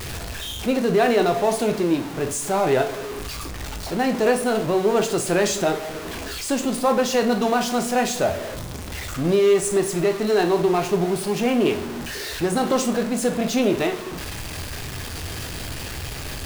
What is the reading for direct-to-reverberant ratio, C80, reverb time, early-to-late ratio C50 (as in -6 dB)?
5.5 dB, 17.0 dB, 0.40 s, 12.5 dB